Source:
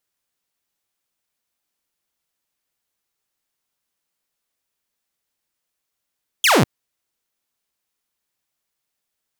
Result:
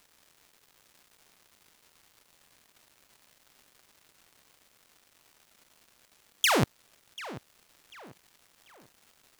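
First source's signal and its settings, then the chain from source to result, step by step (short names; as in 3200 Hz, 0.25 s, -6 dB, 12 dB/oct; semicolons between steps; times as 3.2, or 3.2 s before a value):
laser zap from 3500 Hz, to 97 Hz, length 0.20 s saw, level -9 dB
negative-ratio compressor -23 dBFS, ratio -1; crackle 420/s -47 dBFS; tape echo 0.741 s, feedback 41%, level -14.5 dB, low-pass 3700 Hz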